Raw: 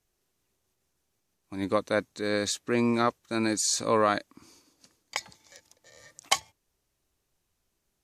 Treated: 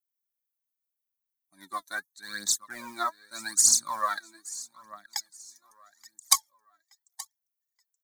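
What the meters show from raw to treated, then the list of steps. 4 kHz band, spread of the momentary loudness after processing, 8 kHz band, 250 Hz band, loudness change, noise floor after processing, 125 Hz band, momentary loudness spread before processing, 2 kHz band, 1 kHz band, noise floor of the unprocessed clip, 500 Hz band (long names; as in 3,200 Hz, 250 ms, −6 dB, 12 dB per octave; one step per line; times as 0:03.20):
+1.0 dB, 22 LU, +8.0 dB, −21.0 dB, +1.0 dB, below −85 dBFS, below −20 dB, 12 LU, −3.5 dB, −2.5 dB, −79 dBFS, −18.5 dB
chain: spectral dynamics exaggerated over time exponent 1.5
spectral tilt +4.5 dB per octave
in parallel at −12 dB: bit reduction 5 bits
on the sum: high-pass filter 150 Hz 24 dB per octave
on a send: repeating echo 876 ms, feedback 31%, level −19 dB
on the sum: phase shifter 0.81 Hz, delay 3.2 ms, feedback 70%
phaser with its sweep stopped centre 1,100 Hz, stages 4
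level −5 dB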